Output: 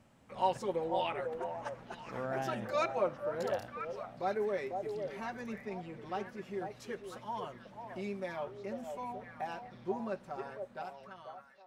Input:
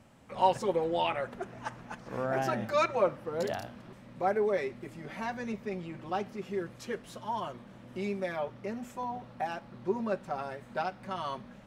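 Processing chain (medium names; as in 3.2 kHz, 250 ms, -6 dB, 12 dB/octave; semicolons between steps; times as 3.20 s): fade out at the end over 1.70 s; repeats whose band climbs or falls 495 ms, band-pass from 590 Hz, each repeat 1.4 oct, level -3 dB; trim -5.5 dB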